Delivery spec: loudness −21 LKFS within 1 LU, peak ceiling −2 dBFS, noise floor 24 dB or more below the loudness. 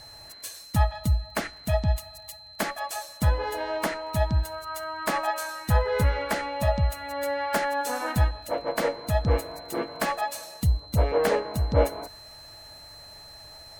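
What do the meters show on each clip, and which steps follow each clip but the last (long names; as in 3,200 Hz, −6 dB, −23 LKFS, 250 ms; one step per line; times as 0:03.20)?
crackle rate 21 per second; interfering tone 4,100 Hz; level of the tone −45 dBFS; integrated loudness −27.5 LKFS; sample peak −9.0 dBFS; target loudness −21.0 LKFS
→ click removal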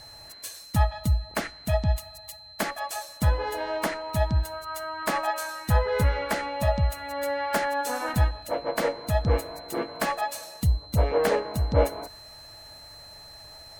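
crackle rate 0.22 per second; interfering tone 4,100 Hz; level of the tone −45 dBFS
→ notch filter 4,100 Hz, Q 30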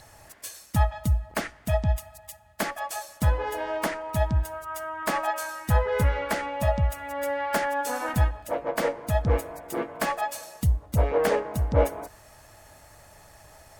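interfering tone none found; integrated loudness −27.5 LKFS; sample peak −9.5 dBFS; target loudness −21.0 LKFS
→ level +6.5 dB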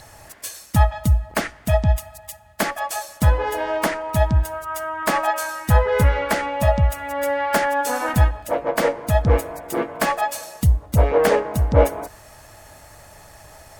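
integrated loudness −21.0 LKFS; sample peak −3.0 dBFS; background noise floor −46 dBFS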